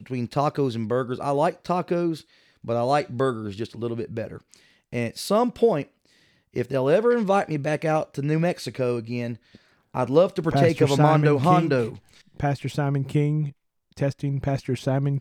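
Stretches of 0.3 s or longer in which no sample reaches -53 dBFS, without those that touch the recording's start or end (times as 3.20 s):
13.52–13.91 s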